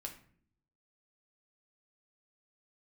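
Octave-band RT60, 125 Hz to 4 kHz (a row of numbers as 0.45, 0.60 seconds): 1.0, 0.90, 0.60, 0.45, 0.50, 0.35 seconds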